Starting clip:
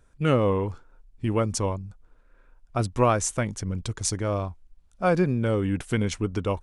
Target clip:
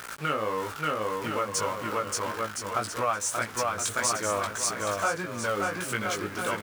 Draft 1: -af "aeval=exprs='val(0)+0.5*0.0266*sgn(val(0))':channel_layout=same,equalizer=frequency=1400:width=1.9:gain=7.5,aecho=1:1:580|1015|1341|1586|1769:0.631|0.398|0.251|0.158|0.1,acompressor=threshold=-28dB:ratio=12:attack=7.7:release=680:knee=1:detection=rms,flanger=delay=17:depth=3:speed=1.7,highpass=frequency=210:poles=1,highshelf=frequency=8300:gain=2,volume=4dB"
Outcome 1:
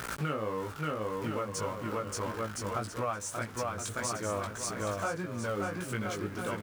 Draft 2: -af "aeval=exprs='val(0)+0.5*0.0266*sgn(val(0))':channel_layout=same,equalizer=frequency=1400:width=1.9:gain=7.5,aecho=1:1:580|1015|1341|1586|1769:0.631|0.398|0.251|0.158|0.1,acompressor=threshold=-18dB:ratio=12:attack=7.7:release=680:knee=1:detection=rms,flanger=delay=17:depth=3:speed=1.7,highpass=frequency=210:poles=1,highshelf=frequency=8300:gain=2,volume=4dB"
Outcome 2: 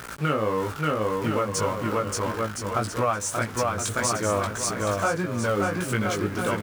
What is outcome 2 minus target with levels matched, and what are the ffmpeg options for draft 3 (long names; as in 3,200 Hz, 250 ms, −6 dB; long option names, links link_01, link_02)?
250 Hz band +5.5 dB
-af "aeval=exprs='val(0)+0.5*0.0266*sgn(val(0))':channel_layout=same,equalizer=frequency=1400:width=1.9:gain=7.5,aecho=1:1:580|1015|1341|1586|1769:0.631|0.398|0.251|0.158|0.1,acompressor=threshold=-18dB:ratio=12:attack=7.7:release=680:knee=1:detection=rms,flanger=delay=17:depth=3:speed=1.7,highpass=frequency=830:poles=1,highshelf=frequency=8300:gain=2,volume=4dB"